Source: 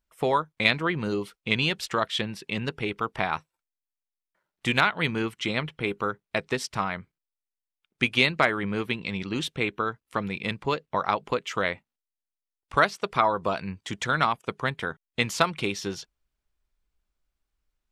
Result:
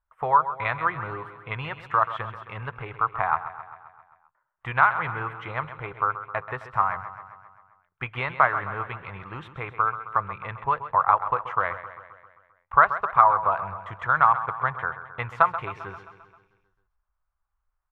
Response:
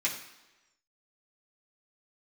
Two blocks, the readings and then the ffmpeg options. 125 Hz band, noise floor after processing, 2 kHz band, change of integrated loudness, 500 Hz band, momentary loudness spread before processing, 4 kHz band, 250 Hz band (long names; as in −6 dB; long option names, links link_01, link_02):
−2.5 dB, −78 dBFS, −0.5 dB, +2.5 dB, −4.0 dB, 9 LU, below −15 dB, −13.5 dB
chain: -filter_complex "[0:a]firequalizer=gain_entry='entry(120,0);entry(210,-19);entry(490,-6);entry(800,4);entry(1100,9);entry(2300,-9);entry(4700,-30)':delay=0.05:min_phase=1,aecho=1:1:132|264|396|528|660|792|924:0.237|0.142|0.0854|0.0512|0.0307|0.0184|0.0111,asplit=2[link_01][link_02];[1:a]atrim=start_sample=2205[link_03];[link_02][link_03]afir=irnorm=-1:irlink=0,volume=-30dB[link_04];[link_01][link_04]amix=inputs=2:normalize=0"